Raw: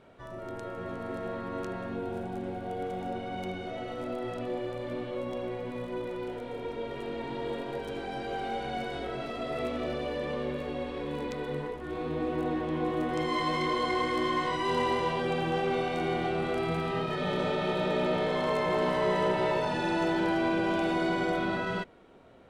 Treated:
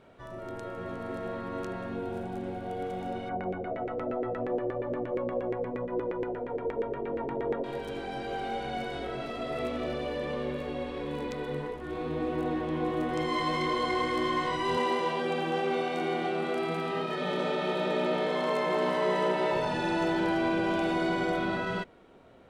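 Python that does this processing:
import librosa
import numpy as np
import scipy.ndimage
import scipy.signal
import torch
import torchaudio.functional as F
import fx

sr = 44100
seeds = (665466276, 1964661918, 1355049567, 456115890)

y = fx.filter_lfo_lowpass(x, sr, shape='saw_down', hz=8.5, low_hz=380.0, high_hz=2000.0, q=2.4, at=(3.29, 7.64))
y = fx.highpass(y, sr, hz=180.0, slope=24, at=(14.77, 19.53))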